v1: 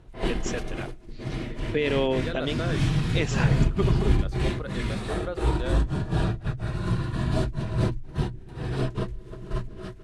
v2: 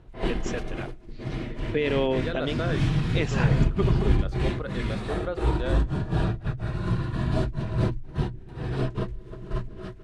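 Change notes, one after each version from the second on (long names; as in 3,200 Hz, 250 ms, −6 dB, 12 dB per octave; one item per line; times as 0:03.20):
second voice: send +11.5 dB
master: add high-shelf EQ 6,000 Hz −9.5 dB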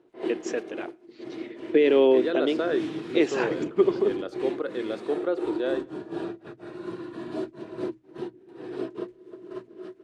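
background −8.5 dB
master: add high-pass with resonance 340 Hz, resonance Q 3.9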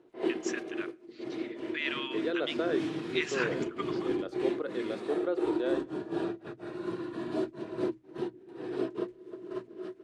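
first voice: add Butterworth high-pass 1,100 Hz 48 dB per octave
second voice −5.0 dB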